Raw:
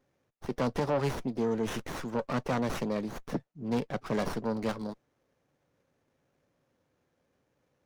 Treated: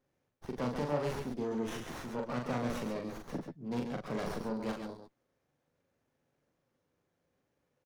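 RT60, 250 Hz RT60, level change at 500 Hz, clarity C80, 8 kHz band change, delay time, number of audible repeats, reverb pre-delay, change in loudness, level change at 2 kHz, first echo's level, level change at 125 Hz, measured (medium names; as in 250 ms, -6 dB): no reverb, no reverb, -5.0 dB, no reverb, -4.5 dB, 41 ms, 2, no reverb, -4.5 dB, -4.5 dB, -3.5 dB, -5.0 dB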